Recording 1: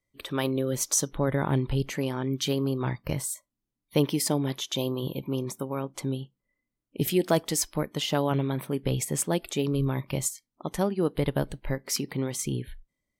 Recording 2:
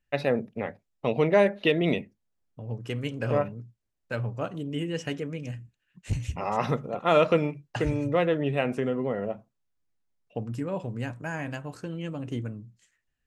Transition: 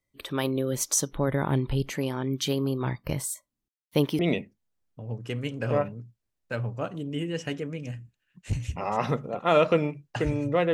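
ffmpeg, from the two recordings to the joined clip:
-filter_complex "[0:a]asettb=1/sr,asplit=3[s0][s1][s2];[s0]atrim=end=3.684[s3];[s1]atrim=start=3.68:end=4.19,asetpts=PTS-STARTPTS,afade=t=in:d=0.004:c=qsin,afade=t=out:st=0.506:d=0.004:c=qsin,aeval=exprs='sgn(val(0))*max(abs(val(0))-0.00188,0)':c=same[s4];[s2]atrim=start=4.186[s5];[s3][s4]acrossfade=d=0.004:c1=hsin:c2=qsin[s6];[s6][s5]acrossfade=d=0.004:c1=qsin:c2=hsin,apad=whole_dur=10.73,atrim=end=10.73,atrim=end=4.192[s7];[1:a]atrim=start=1.788:end=8.33[s8];[s7][s8]acrossfade=d=0.004:c1=hsin:c2=hsin"

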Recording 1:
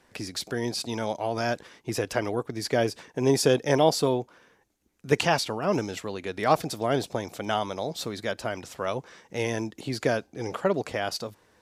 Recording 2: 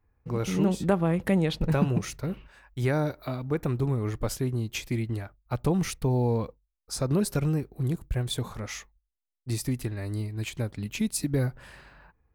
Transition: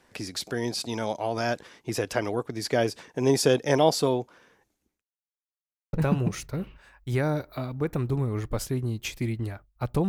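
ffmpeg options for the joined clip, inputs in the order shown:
-filter_complex "[0:a]apad=whole_dur=10.08,atrim=end=10.08,asplit=2[s0][s1];[s0]atrim=end=5.04,asetpts=PTS-STARTPTS,afade=t=out:st=4.59:d=0.45:c=qsin[s2];[s1]atrim=start=5.04:end=5.93,asetpts=PTS-STARTPTS,volume=0[s3];[1:a]atrim=start=1.63:end=5.78,asetpts=PTS-STARTPTS,afade=t=in:d=0.004:c=hsin[s4];[s2][s3][s4]concat=n=3:v=0:a=1"

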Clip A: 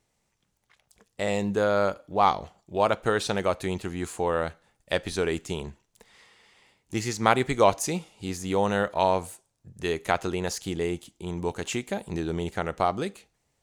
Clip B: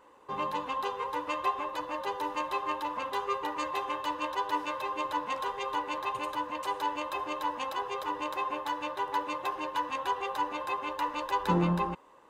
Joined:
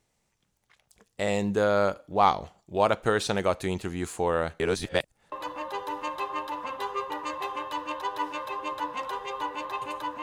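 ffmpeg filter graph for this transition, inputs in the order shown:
-filter_complex "[0:a]apad=whole_dur=10.22,atrim=end=10.22,asplit=2[s0][s1];[s0]atrim=end=4.602[s2];[s1]atrim=start=4.598:end=5.322,asetpts=PTS-STARTPTS,areverse[s3];[1:a]atrim=start=1.648:end=6.55[s4];[s2][s3]acrossfade=d=0.004:c1=hsin:c2=hsin[s5];[s5][s4]acrossfade=d=0.004:c1=hsin:c2=hsin"

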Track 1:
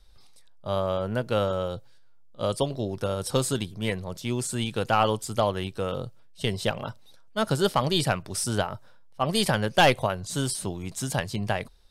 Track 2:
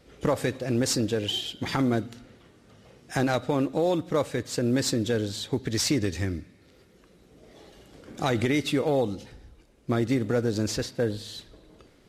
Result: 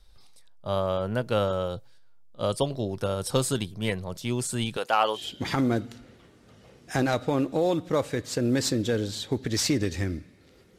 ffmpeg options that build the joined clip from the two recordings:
-filter_complex "[0:a]asettb=1/sr,asplit=3[s0][s1][s2];[s0]atrim=end=4.774[s3];[s1]atrim=start=4.77:end=5.28,asetpts=PTS-STARTPTS,afade=t=in:d=0.004:c=qsin,afade=t=out:st=0.506:d=0.004:c=qsin,highpass=440[s4];[s2]atrim=start=5.276[s5];[s3][s4]acrossfade=d=0.004:c1=hsin:c2=qsin[s6];[s6][s5]acrossfade=d=0.004:c1=qsin:c2=hsin,apad=whole_dur=10.78,atrim=end=10.78,atrim=end=5.28,asetpts=PTS-STARTPTS[s7];[1:a]atrim=start=1.33:end=6.99,asetpts=PTS-STARTPTS[s8];[s7][s8]acrossfade=d=0.16:c1=tri:c2=tri"

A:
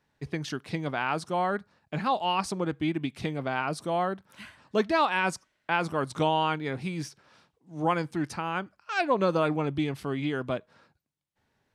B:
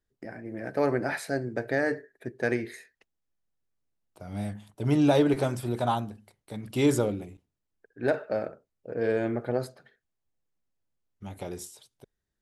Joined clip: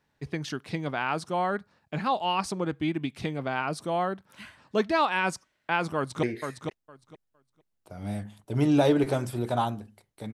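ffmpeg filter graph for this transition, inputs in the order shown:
-filter_complex "[0:a]apad=whole_dur=10.33,atrim=end=10.33,atrim=end=6.232[s0];[1:a]atrim=start=2.528:end=6.63[s1];[s0][s1]acrossfade=d=0.004:c1=hsin:c2=hsin,asplit=2[s2][s3];[s3]afade=t=in:st=5.96:d=0.01,afade=t=out:st=6.23:d=0.01,aecho=0:1:460|920|1380:0.530884|0.0796327|0.0119449[s4];[s2][s4]amix=inputs=2:normalize=0"

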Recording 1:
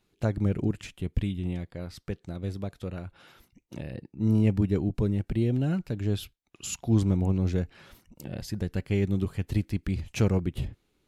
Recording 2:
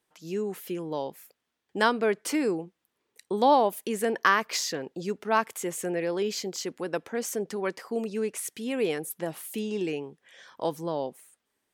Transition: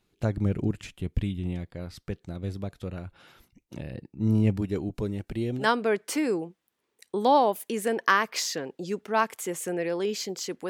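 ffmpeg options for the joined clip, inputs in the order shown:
-filter_complex "[0:a]asettb=1/sr,asplit=3[s0][s1][s2];[s0]atrim=end=4.574[s3];[s1]atrim=start=4.57:end=5.68,asetpts=PTS-STARTPTS,afade=t=in:d=0.004:c=qsin,afade=t=out:st=1.106:d=0.004:c=qsin,bass=f=250:g=-7,treble=f=4000:g=3[s4];[s2]atrim=start=5.676[s5];[s3][s4]acrossfade=d=0.004:c1=hsin:c2=qsin[s6];[s6][s5]acrossfade=d=0.004:c1=qsin:c2=hsin,apad=whole_dur=10.69,atrim=end=10.69,atrim=end=5.68,asetpts=PTS-STARTPTS[s7];[1:a]atrim=start=1.73:end=6.86,asetpts=PTS-STARTPTS[s8];[s7][s8]acrossfade=d=0.12:c1=tri:c2=tri"

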